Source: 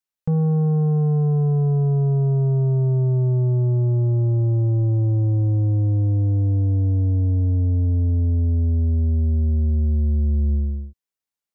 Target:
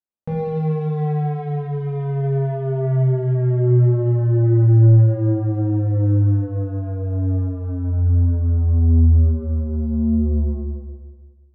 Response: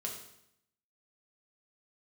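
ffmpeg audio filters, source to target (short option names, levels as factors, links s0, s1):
-filter_complex "[0:a]equalizer=f=730:w=0.43:g=9.5,aeval=exprs='0.299*(cos(1*acos(clip(val(0)/0.299,-1,1)))-cos(1*PI/2))+0.00668*(cos(7*acos(clip(val(0)/0.299,-1,1)))-cos(7*PI/2))':c=same,adynamicsmooth=sensitivity=4.5:basefreq=860[s0];[1:a]atrim=start_sample=2205,asetrate=22932,aresample=44100[s1];[s0][s1]afir=irnorm=-1:irlink=0,volume=0.447"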